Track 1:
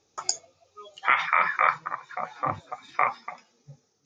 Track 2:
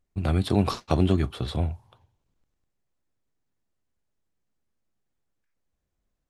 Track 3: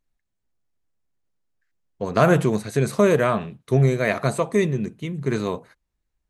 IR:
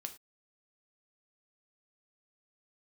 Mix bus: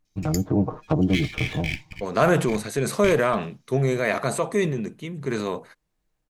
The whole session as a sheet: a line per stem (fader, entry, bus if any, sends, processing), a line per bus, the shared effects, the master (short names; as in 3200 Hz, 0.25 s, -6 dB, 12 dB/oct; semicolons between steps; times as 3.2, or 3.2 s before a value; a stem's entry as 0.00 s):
-3.5 dB, 0.05 s, no send, minimum comb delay 1.3 ms; Chebyshev band-stop 360–1900 Hz, order 4
0.0 dB, 0.00 s, no send, median filter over 15 samples; treble ducked by the level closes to 680 Hz, closed at -20 dBFS; comb 6.5 ms, depth 82%
-1.0 dB, 0.00 s, no send, HPF 210 Hz 6 dB/oct; transient shaper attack -1 dB, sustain +5 dB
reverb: off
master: dry